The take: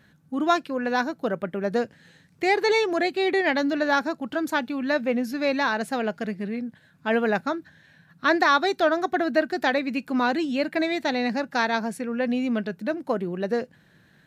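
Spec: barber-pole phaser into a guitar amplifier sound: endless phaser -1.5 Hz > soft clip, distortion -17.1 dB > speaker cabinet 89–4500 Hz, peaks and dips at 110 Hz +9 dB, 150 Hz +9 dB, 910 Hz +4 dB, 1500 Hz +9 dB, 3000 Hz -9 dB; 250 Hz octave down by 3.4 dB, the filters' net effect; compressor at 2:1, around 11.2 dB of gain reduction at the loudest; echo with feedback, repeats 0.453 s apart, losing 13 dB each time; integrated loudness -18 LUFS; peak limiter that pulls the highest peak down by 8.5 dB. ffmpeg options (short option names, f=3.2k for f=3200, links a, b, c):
-filter_complex "[0:a]equalizer=f=250:t=o:g=-5,acompressor=threshold=-37dB:ratio=2,alimiter=level_in=2dB:limit=-24dB:level=0:latency=1,volume=-2dB,aecho=1:1:453|906|1359:0.224|0.0493|0.0108,asplit=2[a][b];[b]afreqshift=-1.5[c];[a][c]amix=inputs=2:normalize=1,asoftclip=threshold=-32dB,highpass=89,equalizer=f=110:t=q:w=4:g=9,equalizer=f=150:t=q:w=4:g=9,equalizer=f=910:t=q:w=4:g=4,equalizer=f=1.5k:t=q:w=4:g=9,equalizer=f=3k:t=q:w=4:g=-9,lowpass=f=4.5k:w=0.5412,lowpass=f=4.5k:w=1.3066,volume=21dB"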